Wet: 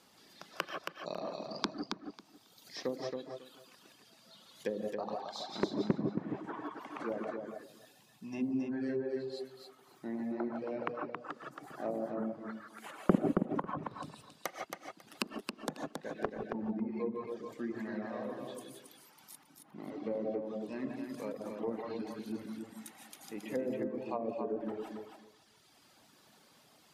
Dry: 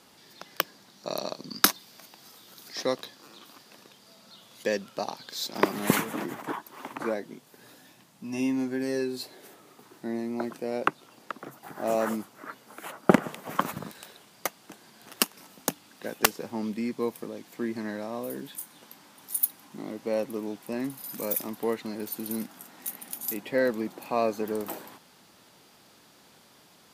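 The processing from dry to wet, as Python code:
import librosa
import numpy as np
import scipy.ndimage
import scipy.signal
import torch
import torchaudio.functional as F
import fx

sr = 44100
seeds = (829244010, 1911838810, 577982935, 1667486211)

p1 = fx.rev_gated(x, sr, seeds[0], gate_ms=190, shape='rising', drr_db=-0.5)
p2 = fx.dereverb_blind(p1, sr, rt60_s=1.7)
p3 = fx.env_lowpass_down(p2, sr, base_hz=450.0, full_db=-23.0)
p4 = p3 + fx.echo_feedback(p3, sr, ms=273, feedback_pct=17, wet_db=-5, dry=0)
y = p4 * 10.0 ** (-7.0 / 20.0)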